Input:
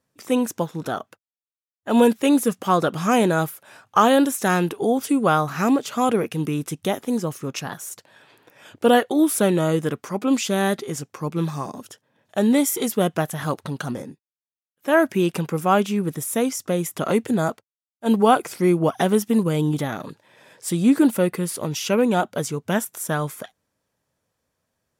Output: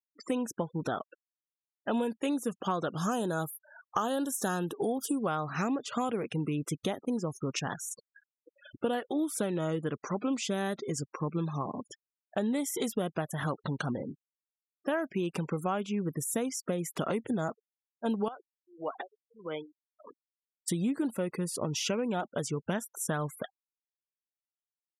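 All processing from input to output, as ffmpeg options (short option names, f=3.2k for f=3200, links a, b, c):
-filter_complex "[0:a]asettb=1/sr,asplit=3[a][b][c];[a]atrim=end=2.974[d];[b]atrim=start=2.97:end=5.19,asetpts=PTS-STARTPTS,afade=t=in:d=0.004:c=qsin,afade=t=out:st=2.216:d=0.004:c=qsin,asuperstop=centerf=2200:order=4:qfactor=2.2,highshelf=f=10k:g=11.5[e];[c]atrim=start=5.186[f];[d][e]acrossfade=d=0.004:c1=hsin:c2=qsin[g];[g][f]acrossfade=d=0.004:c1=qsin:c2=hsin,asettb=1/sr,asplit=3[h][i][j];[h]atrim=end=18.284[k];[i]atrim=start=18.28:end=20.68,asetpts=PTS-STARTPTS,afade=t=in:d=0.004:c=qsin,afade=t=out:st=2.396:d=0.004:c=qsin,acompressor=threshold=-21dB:ratio=20:attack=3.2:release=140:knee=1:detection=peak,highpass=490,lowpass=5.8k,aeval=exprs='val(0)*pow(10,-31*(0.5-0.5*cos(2*PI*1.6*n/s))/20)':c=same[l];[j]atrim=start=20.676[m];[k][l]acrossfade=d=0.004:c1=hsin:c2=qsin[n];[n][m]acrossfade=d=0.004:c1=qsin:c2=hsin,afftfilt=real='re*gte(hypot(re,im),0.0158)':imag='im*gte(hypot(re,im),0.0158)':win_size=1024:overlap=0.75,lowpass=10k,acompressor=threshold=-27dB:ratio=6,volume=-1.5dB"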